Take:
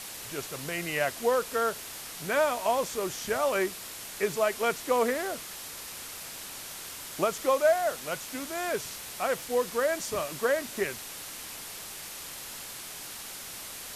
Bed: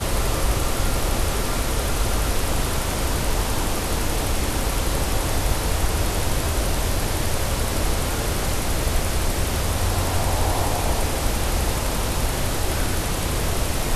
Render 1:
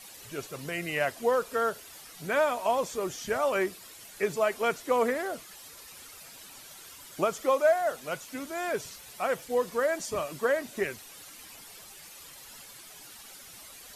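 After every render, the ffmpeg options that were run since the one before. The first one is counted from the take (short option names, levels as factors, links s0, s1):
-af "afftdn=nr=11:nf=-42"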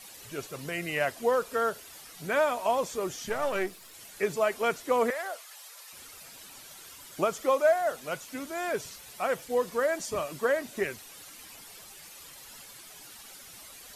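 -filter_complex "[0:a]asettb=1/sr,asplit=3[s0][s1][s2];[s0]atrim=end=3.294[s3];[s1]atrim=start=3.29:end=3.94,asetpts=PTS-STARTPTS,afade=t=in:d=0.004:c=qsin,afade=t=out:st=0.646:d=0.004:c=qsin,aeval=exprs='if(lt(val(0),0),0.447*val(0),val(0))':c=same[s4];[s2]atrim=start=3.936[s5];[s3][s4]acrossfade=d=0.004:c1=hsin:c2=qsin[s6];[s6][s5]acrossfade=d=0.004:c1=qsin:c2=hsin,asettb=1/sr,asplit=3[s7][s8][s9];[s7]atrim=end=5.104[s10];[s8]atrim=start=5.1:end=5.93,asetpts=PTS-STARTPTS,afade=t=in:d=0.004:c=qsin,afade=t=out:st=0.826:d=0.004:c=qsin,highpass=f=570:w=0.5412,highpass=f=570:w=1.3066[s11];[s9]atrim=start=5.926[s12];[s10][s11]acrossfade=d=0.004:c1=hsin:c2=qsin[s13];[s13][s12]acrossfade=d=0.004:c1=qsin:c2=hsin"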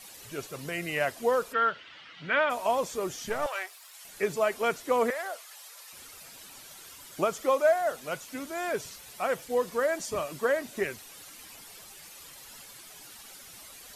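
-filter_complex "[0:a]asplit=3[s0][s1][s2];[s0]afade=t=out:st=1.52:d=0.02[s3];[s1]highpass=110,equalizer=f=210:t=q:w=4:g=-4,equalizer=f=410:t=q:w=4:g=-8,equalizer=f=720:t=q:w=4:g=-6,equalizer=f=1400:t=q:w=4:g=5,equalizer=f=2000:t=q:w=4:g=6,equalizer=f=3000:t=q:w=4:g=8,lowpass=f=4000:w=0.5412,lowpass=f=4000:w=1.3066,afade=t=in:st=1.52:d=0.02,afade=t=out:st=2.49:d=0.02[s4];[s2]afade=t=in:st=2.49:d=0.02[s5];[s3][s4][s5]amix=inputs=3:normalize=0,asettb=1/sr,asplit=3[s6][s7][s8];[s6]atrim=end=3.464[s9];[s7]atrim=start=3.46:end=4.05,asetpts=PTS-STARTPTS,afade=t=in:d=0.004:c=qsin,afade=t=out:st=0.586:d=0.004:c=qsin,highpass=f=690:w=0.5412,highpass=f=690:w=1.3066[s10];[s8]atrim=start=4.046[s11];[s9][s10]acrossfade=d=0.004:c1=hsin:c2=qsin[s12];[s12][s11]acrossfade=d=0.004:c1=qsin:c2=hsin"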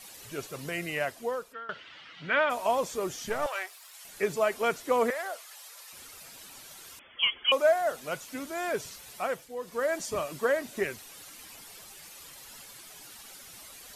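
-filter_complex "[0:a]asettb=1/sr,asplit=3[s0][s1][s2];[s0]atrim=end=6.994[s3];[s1]atrim=start=6.99:end=7.52,asetpts=PTS-STARTPTS,afade=t=in:d=0.004:c=qsin,afade=t=out:st=0.526:d=0.004:c=qsin,lowpass=f=3000:t=q:w=0.5098,lowpass=f=3000:t=q:w=0.6013,lowpass=f=3000:t=q:w=0.9,lowpass=f=3000:t=q:w=2.563,afreqshift=-3500[s4];[s2]atrim=start=7.516[s5];[s3][s4]acrossfade=d=0.004:c1=hsin:c2=qsin[s6];[s6][s5]acrossfade=d=0.004:c1=qsin:c2=hsin,asplit=4[s7][s8][s9][s10];[s7]atrim=end=1.69,asetpts=PTS-STARTPTS,afade=t=out:st=0.77:d=0.92:silence=0.0794328[s11];[s8]atrim=start=1.69:end=9.53,asetpts=PTS-STARTPTS,afade=t=in:d=0.004:c=hsin:silence=0.0794328,afade=t=out:st=7.47:d=0.37:silence=0.281838[s12];[s9]atrim=start=9.53:end=9.57,asetpts=PTS-STARTPTS,volume=0.282[s13];[s10]atrim=start=9.57,asetpts=PTS-STARTPTS,afade=t=in:d=0.37:silence=0.281838[s14];[s11][s12][s13][s14]concat=n=4:v=0:a=1"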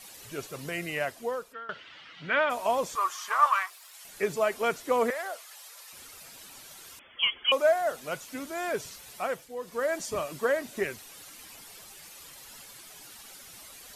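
-filter_complex "[0:a]asettb=1/sr,asplit=3[s0][s1][s2];[s0]atrim=end=2.954[s3];[s1]atrim=start=2.95:end=3.7,asetpts=PTS-STARTPTS,afade=t=in:d=0.004:c=qsin,afade=t=out:st=0.746:d=0.004:c=qsin,highpass=f=1100:t=q:w=11[s4];[s2]atrim=start=3.696[s5];[s3][s4]acrossfade=d=0.004:c1=hsin:c2=qsin[s6];[s6][s5]acrossfade=d=0.004:c1=qsin:c2=hsin"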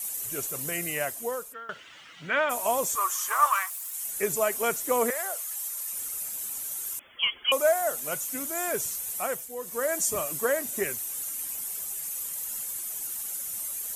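-af "aexciter=amount=6.2:drive=5.1:freq=6500"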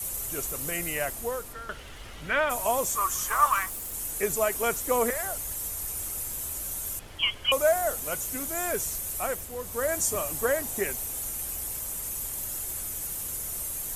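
-filter_complex "[1:a]volume=0.0708[s0];[0:a][s0]amix=inputs=2:normalize=0"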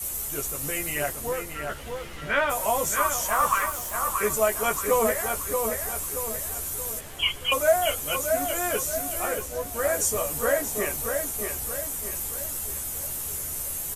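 -filter_complex "[0:a]asplit=2[s0][s1];[s1]adelay=14,volume=0.708[s2];[s0][s2]amix=inputs=2:normalize=0,asplit=2[s3][s4];[s4]adelay=628,lowpass=f=3600:p=1,volume=0.562,asplit=2[s5][s6];[s6]adelay=628,lowpass=f=3600:p=1,volume=0.46,asplit=2[s7][s8];[s8]adelay=628,lowpass=f=3600:p=1,volume=0.46,asplit=2[s9][s10];[s10]adelay=628,lowpass=f=3600:p=1,volume=0.46,asplit=2[s11][s12];[s12]adelay=628,lowpass=f=3600:p=1,volume=0.46,asplit=2[s13][s14];[s14]adelay=628,lowpass=f=3600:p=1,volume=0.46[s15];[s5][s7][s9][s11][s13][s15]amix=inputs=6:normalize=0[s16];[s3][s16]amix=inputs=2:normalize=0"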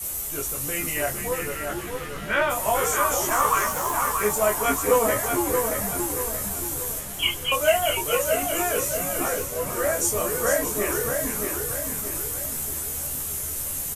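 -filter_complex "[0:a]asplit=2[s0][s1];[s1]adelay=24,volume=0.531[s2];[s0][s2]amix=inputs=2:normalize=0,asplit=5[s3][s4][s5][s6][s7];[s4]adelay=452,afreqshift=-150,volume=0.501[s8];[s5]adelay=904,afreqshift=-300,volume=0.18[s9];[s6]adelay=1356,afreqshift=-450,volume=0.0653[s10];[s7]adelay=1808,afreqshift=-600,volume=0.0234[s11];[s3][s8][s9][s10][s11]amix=inputs=5:normalize=0"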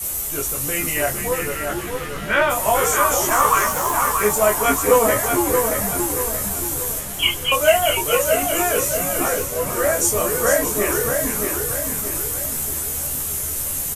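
-af "volume=1.78"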